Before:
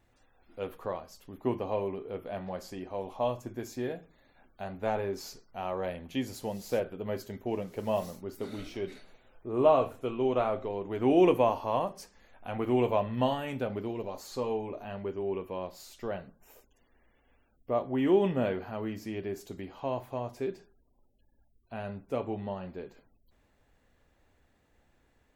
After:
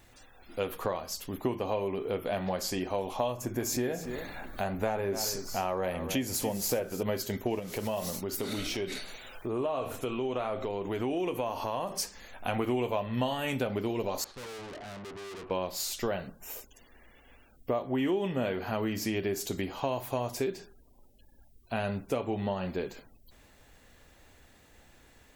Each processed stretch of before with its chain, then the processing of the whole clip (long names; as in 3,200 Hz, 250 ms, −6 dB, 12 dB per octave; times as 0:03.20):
0:03.32–0:07.03: parametric band 3,700 Hz −6.5 dB 1 octave + upward compression, threshold −38 dBFS + single-tap delay 285 ms −13.5 dB
0:07.59–0:11.92: downward compressor 2.5 to 1, threshold −41 dBFS + one half of a high-frequency compander encoder only
0:14.24–0:15.51: low-pass filter 1,600 Hz + tube saturation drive 51 dB, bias 0.55
0:19.64–0:20.44: high-shelf EQ 5,600 Hz +5.5 dB + one half of a high-frequency compander decoder only
whole clip: high-shelf EQ 2,500 Hz +9.5 dB; downward compressor 6 to 1, threshold −36 dBFS; level +8.5 dB